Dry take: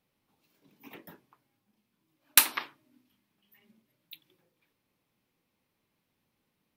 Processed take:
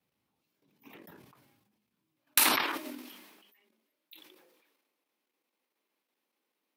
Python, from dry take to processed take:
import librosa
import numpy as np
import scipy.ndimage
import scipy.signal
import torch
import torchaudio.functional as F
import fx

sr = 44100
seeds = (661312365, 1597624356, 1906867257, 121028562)

y = fx.level_steps(x, sr, step_db=10)
y = fx.highpass(y, sr, hz=fx.steps((0.0, 55.0), (2.63, 290.0)), slope=24)
y = fx.sustainer(y, sr, db_per_s=40.0)
y = y * librosa.db_to_amplitude(-1.5)